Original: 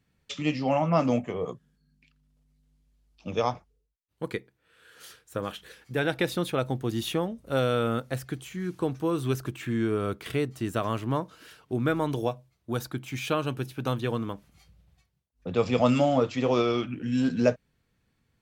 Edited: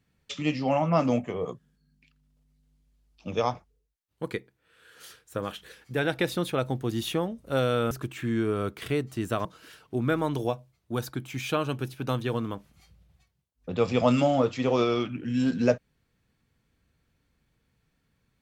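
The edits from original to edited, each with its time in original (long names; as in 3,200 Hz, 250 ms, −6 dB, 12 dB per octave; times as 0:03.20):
0:07.91–0:09.35: remove
0:10.89–0:11.23: remove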